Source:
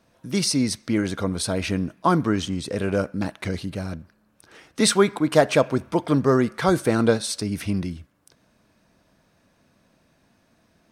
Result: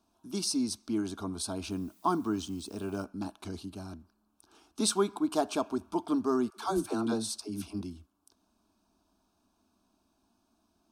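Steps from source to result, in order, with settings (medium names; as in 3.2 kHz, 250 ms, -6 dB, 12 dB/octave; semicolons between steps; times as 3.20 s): static phaser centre 520 Hz, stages 6; 1.70–3.03 s: added noise blue -58 dBFS; 6.50–7.81 s: phase dispersion lows, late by 84 ms, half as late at 410 Hz; trim -7 dB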